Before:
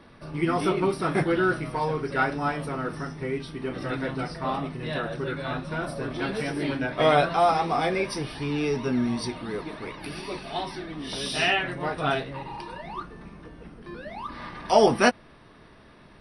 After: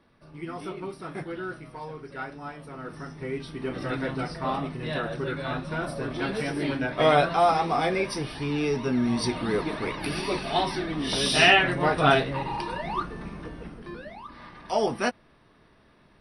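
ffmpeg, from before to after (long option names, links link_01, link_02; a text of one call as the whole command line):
ffmpeg -i in.wav -af "volume=6dB,afade=type=in:start_time=2.64:duration=1.04:silence=0.266073,afade=type=in:start_time=9.01:duration=0.42:silence=0.501187,afade=type=out:start_time=13.47:duration=0.74:silence=0.223872" out.wav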